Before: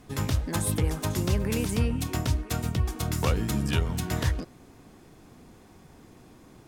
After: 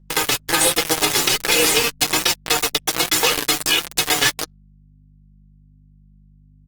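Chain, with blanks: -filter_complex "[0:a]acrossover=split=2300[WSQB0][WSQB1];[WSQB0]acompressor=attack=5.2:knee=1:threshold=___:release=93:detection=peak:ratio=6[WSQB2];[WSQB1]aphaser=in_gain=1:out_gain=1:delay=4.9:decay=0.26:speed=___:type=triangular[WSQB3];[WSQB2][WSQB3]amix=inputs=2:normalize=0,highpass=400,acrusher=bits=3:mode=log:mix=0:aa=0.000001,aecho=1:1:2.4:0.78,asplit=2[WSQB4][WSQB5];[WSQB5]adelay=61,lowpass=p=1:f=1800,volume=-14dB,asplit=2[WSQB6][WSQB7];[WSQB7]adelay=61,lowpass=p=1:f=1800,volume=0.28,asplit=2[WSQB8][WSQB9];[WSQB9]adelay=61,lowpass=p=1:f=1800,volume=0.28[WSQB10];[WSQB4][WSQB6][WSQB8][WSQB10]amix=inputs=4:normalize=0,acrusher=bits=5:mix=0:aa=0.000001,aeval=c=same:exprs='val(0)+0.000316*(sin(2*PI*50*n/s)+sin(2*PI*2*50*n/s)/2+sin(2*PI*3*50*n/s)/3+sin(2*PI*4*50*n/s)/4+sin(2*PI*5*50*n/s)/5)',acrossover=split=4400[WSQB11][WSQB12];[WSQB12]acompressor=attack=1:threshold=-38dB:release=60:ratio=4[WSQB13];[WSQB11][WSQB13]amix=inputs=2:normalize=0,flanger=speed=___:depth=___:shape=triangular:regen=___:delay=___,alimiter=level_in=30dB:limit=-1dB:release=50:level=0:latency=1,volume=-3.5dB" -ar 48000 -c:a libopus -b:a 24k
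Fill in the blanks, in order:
-37dB, 0.62, 1.3, 1.4, 21, 5.7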